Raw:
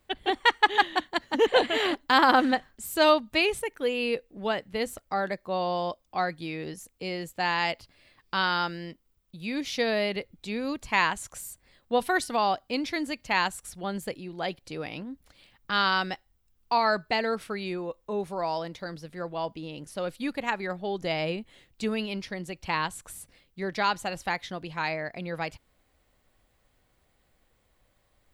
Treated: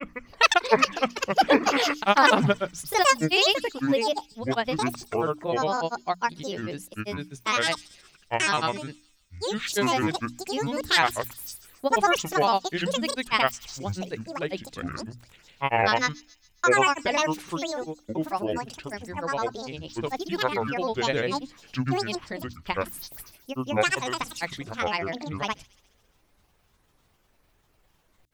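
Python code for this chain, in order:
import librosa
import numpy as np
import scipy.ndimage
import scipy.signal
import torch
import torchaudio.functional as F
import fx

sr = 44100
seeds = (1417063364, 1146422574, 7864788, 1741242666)

y = fx.granulator(x, sr, seeds[0], grain_ms=100.0, per_s=20.0, spray_ms=100.0, spread_st=12)
y = fx.hum_notches(y, sr, base_hz=60, count=5)
y = fx.echo_wet_highpass(y, sr, ms=136, feedback_pct=53, hz=5500.0, wet_db=-13)
y = y * 10.0 ** (4.0 / 20.0)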